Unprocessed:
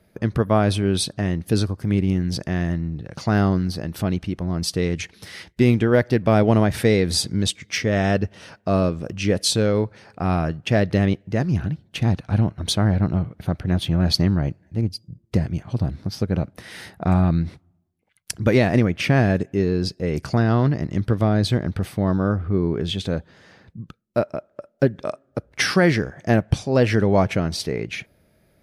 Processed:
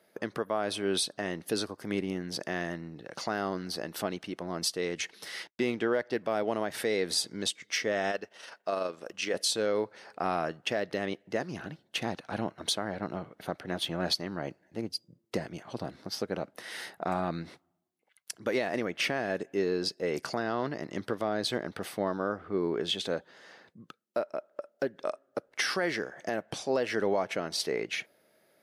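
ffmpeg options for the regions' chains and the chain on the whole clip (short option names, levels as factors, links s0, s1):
-filter_complex "[0:a]asettb=1/sr,asplit=3[s0][s1][s2];[s0]atrim=end=2.014[s3];[s1]atrim=start=2.01:end=2.41,asetpts=PTS-STARTPTS,afade=t=in:d=0.004:c=qsin,afade=t=out:st=0.396:d=0.004:c=qsin,lowpass=f=1800:p=1,aemphasis=mode=production:type=50fm[s4];[s2]atrim=start=2.406[s5];[s3][s4]acrossfade=d=0.004:c1=hsin:c2=qsin[s6];[s6][s5]acrossfade=d=0.004:c1=qsin:c2=hsin,asettb=1/sr,asplit=3[s7][s8][s9];[s7]atrim=end=5.474[s10];[s8]atrim=start=5.47:end=6.14,asetpts=PTS-STARTPTS,afade=t=in:d=0.004:c=qsin,afade=t=out:st=0.666:d=0.004:c=qsin,agate=range=0.0224:threshold=0.0112:ratio=3:release=100:detection=peak,adynamicsmooth=sensitivity=3:basefreq=7000[s11];[s9]atrim=start=6.136[s12];[s10][s11]acrossfade=d=0.004:c1=hsin:c2=qsin[s13];[s13][s12]acrossfade=d=0.004:c1=qsin:c2=hsin,asettb=1/sr,asplit=3[s14][s15][s16];[s14]atrim=end=8.114[s17];[s15]atrim=start=8.11:end=9.34,asetpts=PTS-STARTPTS,afade=t=in:d=0.004:c=qsin,afade=t=out:st=1.226:d=0.004:c=qsin,lowshelf=f=310:g=-11.5,tremolo=f=24:d=0.4[s18];[s16]atrim=start=9.336[s19];[s17][s18]acrossfade=d=0.004:c1=hsin:c2=qsin[s20];[s20][s19]acrossfade=d=0.004:c1=qsin:c2=hsin,highpass=400,bandreject=f=2400:w=18,alimiter=limit=0.15:level=0:latency=1:release=372,volume=0.841"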